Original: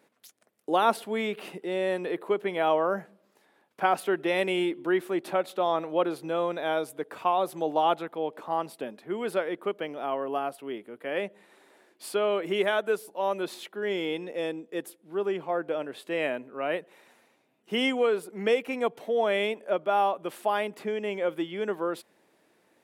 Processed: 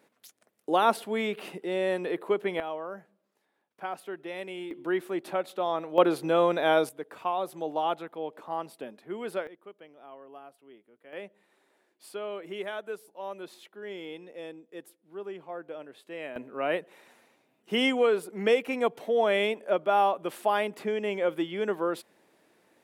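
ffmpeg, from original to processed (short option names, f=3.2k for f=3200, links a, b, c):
-af "asetnsamples=n=441:p=0,asendcmd='2.6 volume volume -11.5dB;4.71 volume volume -3dB;5.98 volume volume 5dB;6.89 volume volume -4.5dB;9.47 volume volume -17.5dB;11.13 volume volume -10dB;16.36 volume volume 1dB',volume=0dB"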